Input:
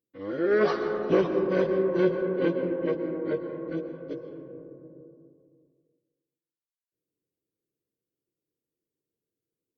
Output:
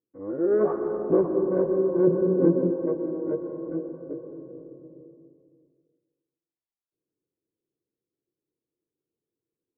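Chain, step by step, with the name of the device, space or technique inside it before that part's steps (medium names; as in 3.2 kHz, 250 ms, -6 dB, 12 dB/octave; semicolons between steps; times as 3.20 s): 2.07–2.71 s: peaking EQ 180 Hz +9 dB 1.7 oct; under water (low-pass 1.1 kHz 24 dB/octave; peaking EQ 350 Hz +4 dB 0.51 oct); trim -1 dB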